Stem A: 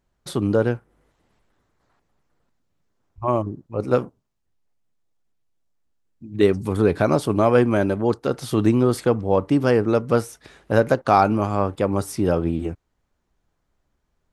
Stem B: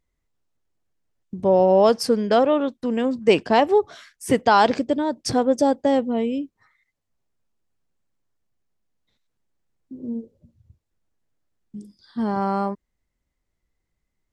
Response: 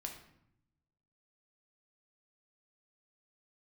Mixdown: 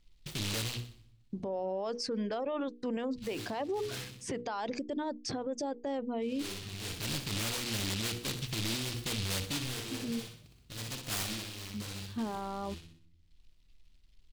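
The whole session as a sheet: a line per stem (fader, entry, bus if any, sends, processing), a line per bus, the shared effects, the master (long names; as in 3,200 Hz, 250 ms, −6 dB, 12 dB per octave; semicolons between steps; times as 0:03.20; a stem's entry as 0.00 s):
−9.5 dB, 0.00 s, send −15 dB, echo send −17.5 dB, spectral tilt −4.5 dB per octave; soft clipping −14 dBFS, distortion −7 dB; short delay modulated by noise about 3,400 Hz, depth 0.43 ms; automatic ducking −24 dB, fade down 0.55 s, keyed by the second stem
−2.5 dB, 0.00 s, no send, no echo send, low-pass filter 7,200 Hz 24 dB per octave; reverb reduction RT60 0.56 s; brickwall limiter −15.5 dBFS, peak gain reduction 11 dB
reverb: on, RT60 0.75 s, pre-delay 3 ms
echo: repeating echo 62 ms, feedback 46%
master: parametric band 77 Hz −5 dB 2.4 octaves; mains-hum notches 60/120/180/240/300/360/420/480 Hz; brickwall limiter −27.5 dBFS, peak gain reduction 11 dB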